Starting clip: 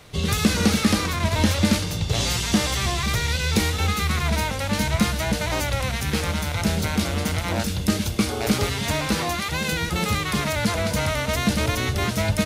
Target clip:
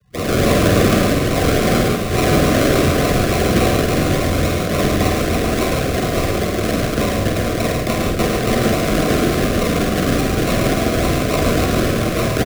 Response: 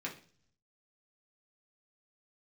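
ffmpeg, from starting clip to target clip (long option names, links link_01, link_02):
-filter_complex "[0:a]afftfilt=real='re*gte(hypot(re,im),0.0158)':imag='im*gte(hypot(re,im),0.0158)':win_size=1024:overlap=0.75,tiltshelf=frequency=1300:gain=-8.5,asplit=2[link_01][link_02];[link_02]aeval=exprs='0.133*(abs(mod(val(0)/0.133+3,4)-2)-1)':channel_layout=same,volume=-9dB[link_03];[link_01][link_03]amix=inputs=2:normalize=0,acrusher=samples=38:mix=1:aa=0.000001:lfo=1:lforange=22.8:lforate=3.5,afreqshift=14,asuperstop=centerf=880:order=20:qfactor=4.3,asplit=2[link_04][link_05];[link_05]adelay=48,volume=-5dB[link_06];[link_04][link_06]amix=inputs=2:normalize=0,asplit=2[link_07][link_08];[link_08]aecho=0:1:107|141|434:0.562|0.422|0.376[link_09];[link_07][link_09]amix=inputs=2:normalize=0,volume=2dB"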